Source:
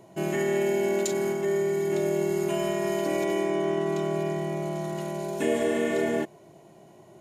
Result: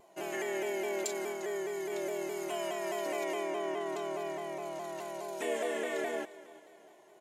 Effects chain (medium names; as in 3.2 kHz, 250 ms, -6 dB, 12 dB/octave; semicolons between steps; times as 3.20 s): high-pass 490 Hz 12 dB/octave; on a send: feedback delay 352 ms, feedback 46%, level -18 dB; on the sum: vibrato with a chosen wave saw down 4.8 Hz, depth 100 cents; trim -5 dB